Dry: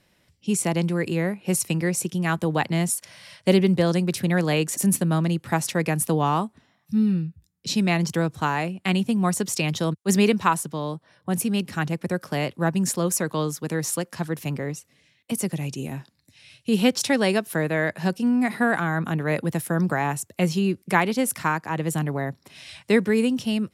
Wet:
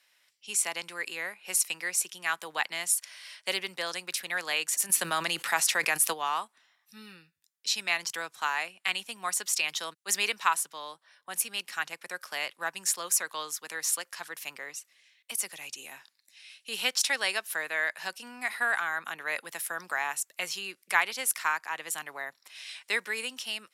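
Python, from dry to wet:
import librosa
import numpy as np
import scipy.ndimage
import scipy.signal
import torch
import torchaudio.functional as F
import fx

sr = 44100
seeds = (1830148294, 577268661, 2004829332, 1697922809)

y = scipy.signal.sosfilt(scipy.signal.butter(2, 1300.0, 'highpass', fs=sr, output='sos'), x)
y = fx.env_flatten(y, sr, amount_pct=50, at=(4.89, 6.12), fade=0.02)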